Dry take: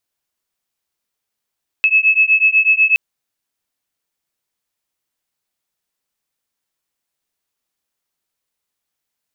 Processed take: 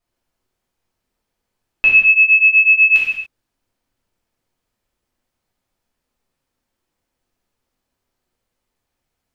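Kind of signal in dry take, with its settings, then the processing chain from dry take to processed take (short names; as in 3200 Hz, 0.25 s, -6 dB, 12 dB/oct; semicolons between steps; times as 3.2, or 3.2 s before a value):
beating tones 2590 Hz, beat 8.1 Hz, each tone -13 dBFS 1.12 s
tilt -3 dB/oct; non-linear reverb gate 0.31 s falling, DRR -6.5 dB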